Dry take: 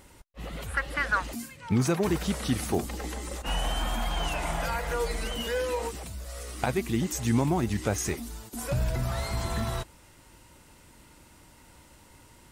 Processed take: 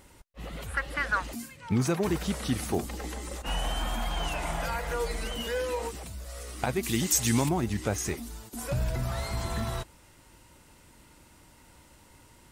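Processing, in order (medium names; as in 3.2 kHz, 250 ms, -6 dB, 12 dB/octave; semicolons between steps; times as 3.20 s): 6.83–7.49 s: treble shelf 2.1 kHz +12 dB; trim -1.5 dB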